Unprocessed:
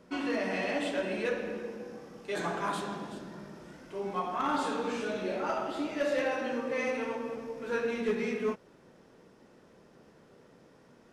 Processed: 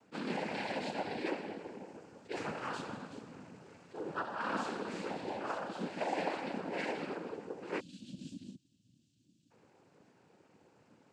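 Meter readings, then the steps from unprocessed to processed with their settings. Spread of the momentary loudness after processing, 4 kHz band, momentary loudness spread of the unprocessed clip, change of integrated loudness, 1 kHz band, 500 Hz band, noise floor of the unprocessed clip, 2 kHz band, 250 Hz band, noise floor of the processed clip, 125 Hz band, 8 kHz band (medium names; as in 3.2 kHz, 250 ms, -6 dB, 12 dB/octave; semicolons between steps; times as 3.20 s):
14 LU, -4.5 dB, 13 LU, -6.5 dB, -4.5 dB, -8.5 dB, -60 dBFS, -6.0 dB, -6.5 dB, -71 dBFS, -3.0 dB, -7.0 dB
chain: spectral selection erased 7.80–9.50 s, 230–3000 Hz; noise-vocoded speech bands 8; attacks held to a fixed rise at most 440 dB/s; trim -5.5 dB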